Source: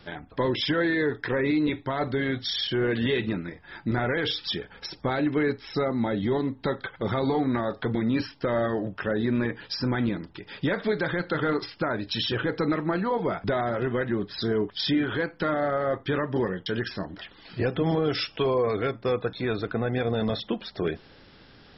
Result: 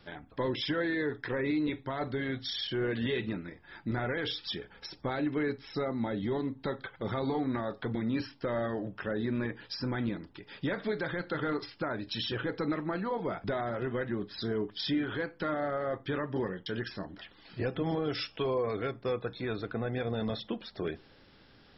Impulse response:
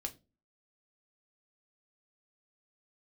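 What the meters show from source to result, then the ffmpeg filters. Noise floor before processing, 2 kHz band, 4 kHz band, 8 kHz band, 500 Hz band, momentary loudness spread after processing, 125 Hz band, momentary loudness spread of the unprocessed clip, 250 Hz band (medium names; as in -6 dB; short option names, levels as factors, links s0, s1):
-53 dBFS, -6.5 dB, -6.5 dB, no reading, -7.0 dB, 7 LU, -6.5 dB, 7 LU, -6.5 dB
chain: -filter_complex "[0:a]asplit=2[s0][s1];[1:a]atrim=start_sample=2205[s2];[s1][s2]afir=irnorm=-1:irlink=0,volume=0.299[s3];[s0][s3]amix=inputs=2:normalize=0,volume=0.376"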